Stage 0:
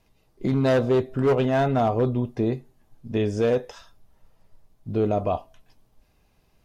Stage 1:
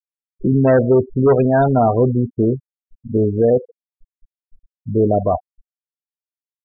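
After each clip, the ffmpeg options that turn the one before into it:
-af "afftfilt=real='re*gte(hypot(re,im),0.0891)':imag='im*gte(hypot(re,im),0.0891)':win_size=1024:overlap=0.75,volume=7.5dB"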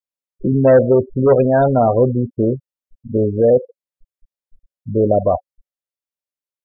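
-af "equalizer=f=550:t=o:w=0.21:g=11,volume=-1dB"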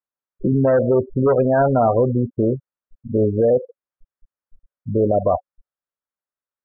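-af "alimiter=limit=-10dB:level=0:latency=1:release=118,lowpass=f=1.4k:t=q:w=1.9"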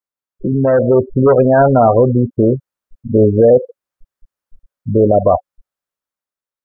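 -af "dynaudnorm=f=160:g=9:m=11.5dB"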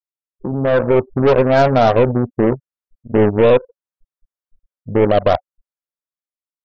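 -af "aeval=exprs='0.891*(cos(1*acos(clip(val(0)/0.891,-1,1)))-cos(1*PI/2))+0.178*(cos(2*acos(clip(val(0)/0.891,-1,1)))-cos(2*PI/2))+0.0178*(cos(5*acos(clip(val(0)/0.891,-1,1)))-cos(5*PI/2))+0.1*(cos(7*acos(clip(val(0)/0.891,-1,1)))-cos(7*PI/2))':c=same,volume=-3dB"

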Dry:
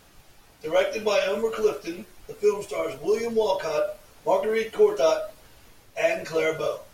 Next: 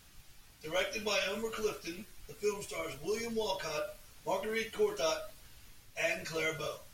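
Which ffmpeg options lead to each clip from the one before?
-af "equalizer=f=550:t=o:w=2.5:g=-11.5,volume=-2dB"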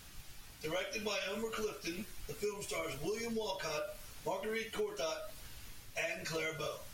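-af "acompressor=threshold=-41dB:ratio=5,volume=5dB"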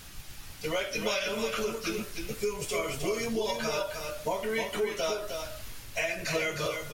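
-af "aecho=1:1:310:0.501,volume=7dB"

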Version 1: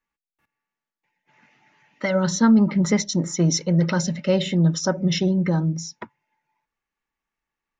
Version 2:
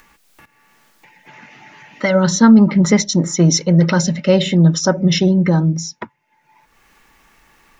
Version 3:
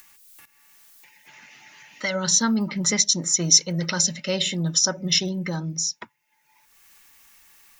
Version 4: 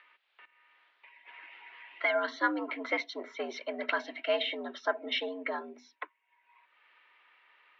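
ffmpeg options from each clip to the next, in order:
-af "acompressor=mode=upward:threshold=-38dB:ratio=2.5,volume=7dB"
-af "crystalizer=i=9:c=0,volume=-15dB"
-filter_complex "[0:a]acrossover=split=380 2900:gain=0.158 1 0.178[a][b][c];[a][b][c]amix=inputs=3:normalize=0,highpass=f=180:t=q:w=0.5412,highpass=f=180:t=q:w=1.307,lowpass=f=3.6k:t=q:w=0.5176,lowpass=f=3.6k:t=q:w=0.7071,lowpass=f=3.6k:t=q:w=1.932,afreqshift=82"

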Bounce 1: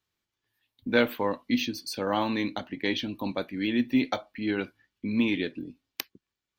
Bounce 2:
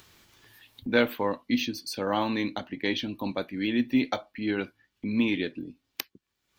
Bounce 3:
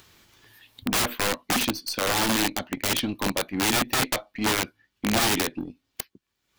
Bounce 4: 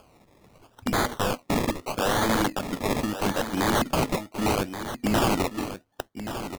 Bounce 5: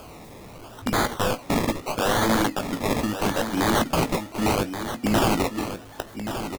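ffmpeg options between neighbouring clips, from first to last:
-af "acompressor=mode=upward:threshold=-37dB:ratio=2.5"
-af "aeval=exprs='(mod(15*val(0)+1,2)-1)/15':c=same,aeval=exprs='0.0668*(cos(1*acos(clip(val(0)/0.0668,-1,1)))-cos(1*PI/2))+0.00473*(cos(3*acos(clip(val(0)/0.0668,-1,1)))-cos(3*PI/2))+0.00211*(cos(7*acos(clip(val(0)/0.0668,-1,1)))-cos(7*PI/2))+0.00119*(cos(8*acos(clip(val(0)/0.0668,-1,1)))-cos(8*PI/2))':c=same,volume=6.5dB"
-af "acrusher=samples=23:mix=1:aa=0.000001:lfo=1:lforange=13.8:lforate=0.76,aecho=1:1:1128:0.299"
-filter_complex "[0:a]aeval=exprs='val(0)+0.5*0.0106*sgn(val(0))':c=same,asplit=2[a][b];[b]adelay=18,volume=-11dB[c];[a][c]amix=inputs=2:normalize=0,volume=1dB"

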